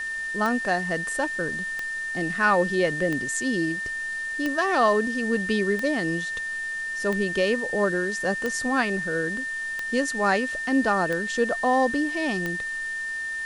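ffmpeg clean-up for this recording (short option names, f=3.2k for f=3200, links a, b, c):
-af "adeclick=t=4,bandreject=f=1.8k:w=30,afwtdn=0.0056"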